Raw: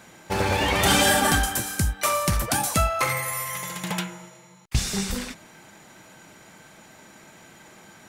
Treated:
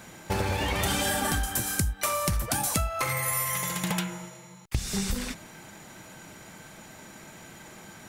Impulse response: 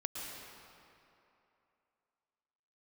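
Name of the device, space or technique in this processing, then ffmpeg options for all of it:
ASMR close-microphone chain: -af "lowshelf=f=140:g=7,acompressor=threshold=-26dB:ratio=6,highshelf=f=9.2k:g=5,volume=1dB"

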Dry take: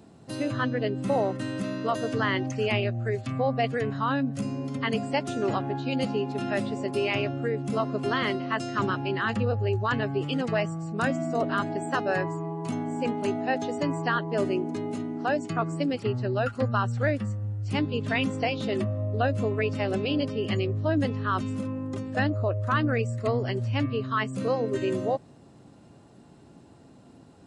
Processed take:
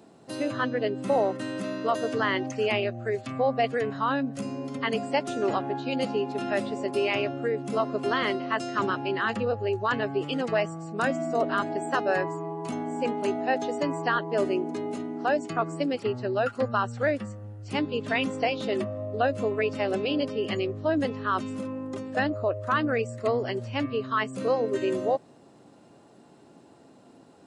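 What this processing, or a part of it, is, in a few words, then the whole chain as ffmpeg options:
filter by subtraction: -filter_complex "[0:a]asplit=2[a][b];[b]lowpass=460,volume=-1[c];[a][c]amix=inputs=2:normalize=0"

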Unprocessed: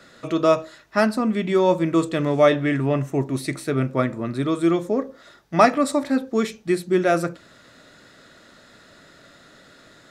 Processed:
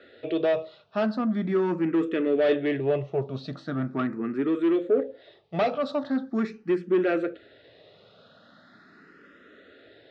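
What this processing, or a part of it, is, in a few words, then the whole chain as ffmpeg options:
barber-pole phaser into a guitar amplifier: -filter_complex "[0:a]asplit=2[a][b];[b]afreqshift=0.41[c];[a][c]amix=inputs=2:normalize=1,asoftclip=type=tanh:threshold=-19dB,highpass=95,equalizer=f=140:t=q:w=4:g=-5,equalizer=f=430:t=q:w=4:g=6,equalizer=f=980:t=q:w=4:g=-8,equalizer=f=2.2k:t=q:w=4:g=-4,lowpass=f=3.7k:w=0.5412,lowpass=f=3.7k:w=1.3066"

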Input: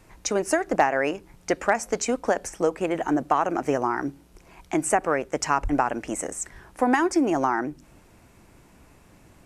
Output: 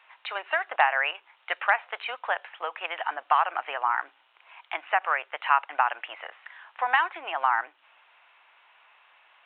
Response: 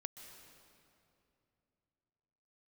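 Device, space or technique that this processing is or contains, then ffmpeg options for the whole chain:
musical greeting card: -af "aresample=8000,aresample=44100,highpass=f=870:w=0.5412,highpass=f=870:w=1.3066,equalizer=f=2.9k:t=o:w=0.34:g=5,volume=3dB"

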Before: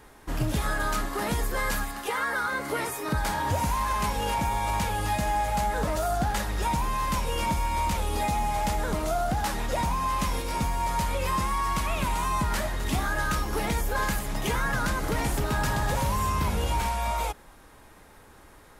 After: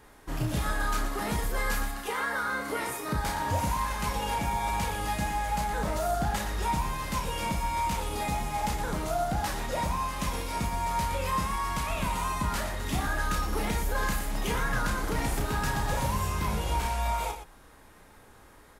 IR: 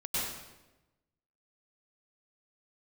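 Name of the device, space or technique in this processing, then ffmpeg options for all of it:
slapback doubling: -filter_complex "[0:a]asplit=3[a][b][c];[b]adelay=33,volume=-5.5dB[d];[c]adelay=118,volume=-9.5dB[e];[a][d][e]amix=inputs=3:normalize=0,volume=-3.5dB"

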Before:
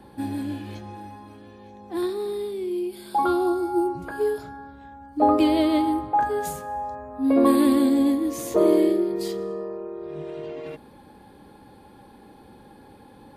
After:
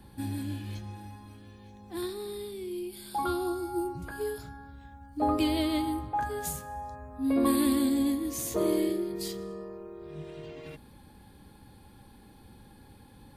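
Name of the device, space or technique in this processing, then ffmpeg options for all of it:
smiley-face EQ: -af "lowshelf=f=180:g=8,equalizer=f=500:t=o:w=2.8:g=-9,highshelf=f=5.4k:g=5.5,volume=-2.5dB"

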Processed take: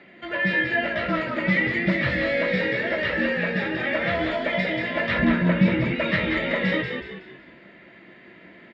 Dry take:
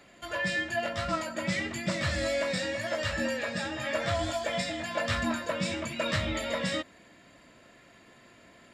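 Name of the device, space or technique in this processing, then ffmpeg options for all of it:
frequency-shifting delay pedal into a guitar cabinet: -filter_complex "[0:a]asplit=6[a][b][c][d][e][f];[b]adelay=185,afreqshift=-60,volume=-5dB[g];[c]adelay=370,afreqshift=-120,volume=-13.2dB[h];[d]adelay=555,afreqshift=-180,volume=-21.4dB[i];[e]adelay=740,afreqshift=-240,volume=-29.5dB[j];[f]adelay=925,afreqshift=-300,volume=-37.7dB[k];[a][g][h][i][j][k]amix=inputs=6:normalize=0,highpass=78,equalizer=f=98:t=q:w=4:g=-9,equalizer=f=190:t=q:w=4:g=7,equalizer=f=350:t=q:w=4:g=9,equalizer=f=1.1k:t=q:w=4:g=-4,equalizer=f=2k:t=q:w=4:g=9,lowpass=f=3.5k:w=0.5412,lowpass=f=3.5k:w=1.3066,asettb=1/sr,asplit=3[l][m][n];[l]atrim=end=5.194[o];[m]atrim=start=5.19:end=5.95,asetpts=PTS-STARTPTS,afade=t=in:d=0.004:c=qsin,afade=t=out:st=0.756:d=0.004:c=qsin,bass=f=250:g=9,treble=f=4k:g=-5[p];[n]atrim=start=5.946[q];[o][p]acrossfade=d=0.004:c1=hsin:c2=qsin[r];[r][q]acrossfade=d=0.004:c1=qsin:c2=hsin,volume=3.5dB"

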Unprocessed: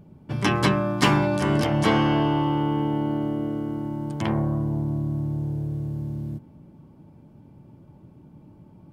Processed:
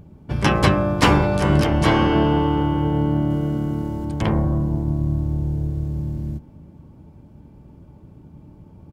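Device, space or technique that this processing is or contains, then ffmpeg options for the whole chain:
octave pedal: -filter_complex "[0:a]asettb=1/sr,asplit=3[a][b][c];[a]atrim=end=3.304[d];[b]atrim=start=3.3:end=4.05,asetpts=PTS-STARTPTS,afade=t=in:d=0.004:c=qsin,afade=t=out:st=0.746:d=0.004:c=qsin,highshelf=f=3k:g=6[e];[c]atrim=start=4.046[f];[d][e]acrossfade=d=0.004:c1=hsin:c2=qsin[g];[g][f]acrossfade=d=0.004:c1=qsin:c2=hsin,asplit=2[h][i];[i]asetrate=22050,aresample=44100,atempo=2,volume=-2dB[j];[h][j]amix=inputs=2:normalize=0,volume=2.5dB"

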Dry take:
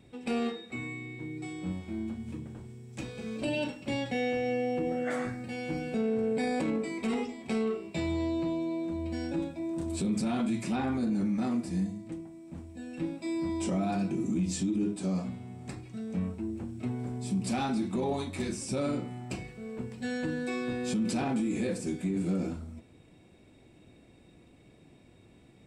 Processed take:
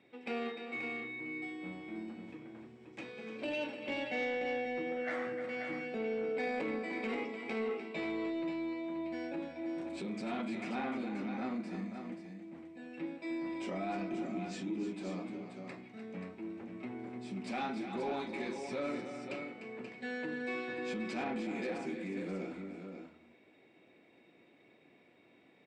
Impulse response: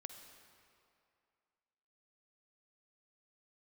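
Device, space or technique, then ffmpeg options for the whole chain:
intercom: -af "highpass=310,lowpass=3.6k,equalizer=f=2.1k:t=o:w=0.51:g=6,aecho=1:1:300|532:0.316|0.422,asoftclip=type=tanh:threshold=-23.5dB,volume=-3.5dB"

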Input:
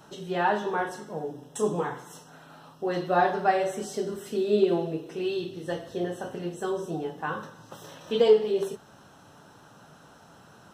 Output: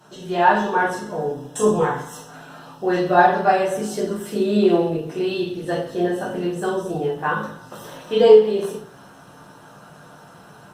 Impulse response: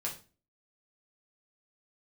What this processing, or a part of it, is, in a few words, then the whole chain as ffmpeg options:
far-field microphone of a smart speaker: -filter_complex "[1:a]atrim=start_sample=2205[a];[0:a][a]afir=irnorm=-1:irlink=0,highpass=f=110:p=1,dynaudnorm=f=160:g=3:m=6.5dB,volume=1dB" -ar 48000 -c:a libopus -b:a 48k

